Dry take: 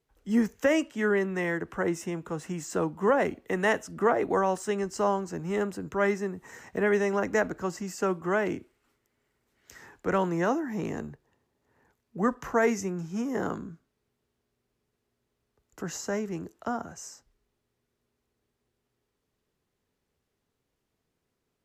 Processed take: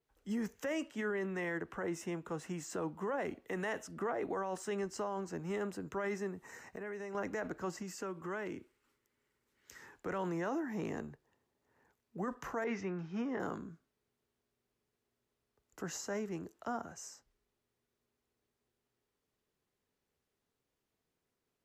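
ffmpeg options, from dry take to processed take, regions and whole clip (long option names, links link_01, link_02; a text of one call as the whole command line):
ffmpeg -i in.wav -filter_complex "[0:a]asettb=1/sr,asplit=3[link_01][link_02][link_03];[link_01]atrim=end=6.444[link_04];[link_02]atrim=start=6.44:end=7.15,asetpts=PTS-STARTPTS,afade=type=in:duration=0.004:curve=qsin,afade=type=out:start_time=0.706:duration=0.004:curve=qsin,bandreject=frequency=3300:width=6.5,acompressor=threshold=-35dB:ratio=6:attack=3.2:release=140:knee=1:detection=peak[link_05];[link_03]atrim=start=7.146[link_06];[link_04][link_05]acrossfade=duration=0.004:curve1=hsin:curve2=qsin[link_07];[link_07][link_06]acrossfade=duration=0.004:curve1=qsin:curve2=hsin,asettb=1/sr,asplit=3[link_08][link_09][link_10];[link_08]atrim=end=7.824[link_11];[link_09]atrim=start=7.82:end=9.94,asetpts=PTS-STARTPTS,afade=type=in:duration=0.004:curve=qsin,afade=type=out:start_time=2.116:duration=0.004:curve=qsin,equalizer=frequency=700:width=6.9:gain=-11,acompressor=threshold=-32dB:ratio=4:attack=3.2:release=140:knee=1:detection=peak[link_12];[link_10]atrim=start=9.936[link_13];[link_11][link_12]acrossfade=duration=0.004:curve1=hsin:curve2=qsin[link_14];[link_14][link_13]acrossfade=duration=0.004:curve1=qsin:curve2=hsin,asettb=1/sr,asplit=3[link_15][link_16][link_17];[link_15]atrim=end=12.644[link_18];[link_16]atrim=start=12.64:end=13.4,asetpts=PTS-STARTPTS,afade=type=in:duration=0.004:curve=qsin,afade=type=out:start_time=0.756:duration=0.004:curve=qsin,lowpass=frequency=4400:width=0.5412,lowpass=frequency=4400:width=1.3066,adynamicequalizer=threshold=0.00794:dfrequency=1800:dqfactor=0.74:tfrequency=1800:tqfactor=0.74:attack=5:release=100:ratio=0.375:range=3:mode=boostabove:tftype=bell[link_19];[link_17]atrim=start=13.396[link_20];[link_18][link_19]acrossfade=duration=0.004:curve1=hsin:curve2=qsin[link_21];[link_21][link_20]acrossfade=duration=0.004:curve1=qsin:curve2=hsin,lowshelf=frequency=210:gain=-5,alimiter=level_in=1dB:limit=-24dB:level=0:latency=1:release=29,volume=-1dB,adynamicequalizer=threshold=0.00224:dfrequency=4800:dqfactor=0.7:tfrequency=4800:tqfactor=0.7:attack=5:release=100:ratio=0.375:range=2:mode=cutabove:tftype=highshelf,volume=-4.5dB" out.wav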